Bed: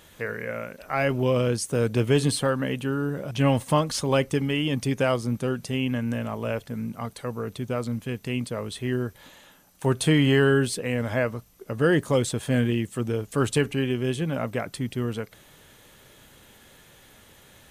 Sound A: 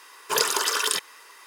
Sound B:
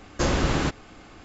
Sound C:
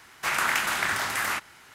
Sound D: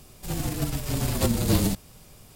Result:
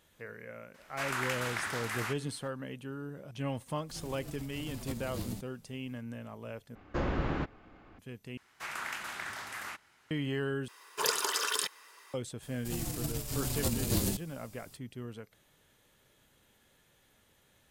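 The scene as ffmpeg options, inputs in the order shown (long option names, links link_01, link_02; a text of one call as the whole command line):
ffmpeg -i bed.wav -i cue0.wav -i cue1.wav -i cue2.wav -i cue3.wav -filter_complex "[3:a]asplit=2[link_01][link_02];[4:a]asplit=2[link_03][link_04];[0:a]volume=-14.5dB[link_05];[link_01]highshelf=frequency=11000:gain=-4[link_06];[2:a]lowpass=2200[link_07];[link_02]highshelf=frequency=11000:gain=-4.5[link_08];[link_04]bass=frequency=250:gain=1,treble=frequency=4000:gain=7[link_09];[link_05]asplit=4[link_10][link_11][link_12][link_13];[link_10]atrim=end=6.754[link_14];[link_07]atrim=end=1.24,asetpts=PTS-STARTPTS,volume=-8.5dB[link_15];[link_11]atrim=start=7.986:end=8.374[link_16];[link_08]atrim=end=1.74,asetpts=PTS-STARTPTS,volume=-13.5dB[link_17];[link_12]atrim=start=10.106:end=10.684[link_18];[1:a]atrim=end=1.46,asetpts=PTS-STARTPTS,volume=-7.5dB[link_19];[link_13]atrim=start=12.136[link_20];[link_06]atrim=end=1.74,asetpts=PTS-STARTPTS,volume=-9.5dB,afade=type=in:duration=0.004:curve=hsin,afade=type=out:start_time=1.736:duration=0.004:curve=hsin,adelay=740[link_21];[link_03]atrim=end=2.35,asetpts=PTS-STARTPTS,volume=-17.5dB,afade=type=in:duration=0.004:curve=hsin,afade=type=out:start_time=2.346:duration=0.004:curve=hsin,adelay=3660[link_22];[link_09]atrim=end=2.35,asetpts=PTS-STARTPTS,volume=-10dB,afade=type=in:duration=0.004:curve=hsin,afade=type=out:start_time=2.346:duration=0.004:curve=hsin,adelay=12420[link_23];[link_14][link_15]acrossfade=duration=0.004:curve1=hsin:curve2=hsin[link_24];[link_24][link_16]acrossfade=duration=0.004:curve1=hsin:curve2=hsin[link_25];[link_25][link_17]acrossfade=duration=0.004:curve1=hsin:curve2=hsin[link_26];[link_26][link_18]acrossfade=duration=0.004:curve1=hsin:curve2=hsin[link_27];[link_27][link_19]acrossfade=duration=0.004:curve1=hsin:curve2=hsin[link_28];[link_28][link_20]acrossfade=duration=0.004:curve1=hsin:curve2=hsin[link_29];[link_29][link_21][link_22][link_23]amix=inputs=4:normalize=0" out.wav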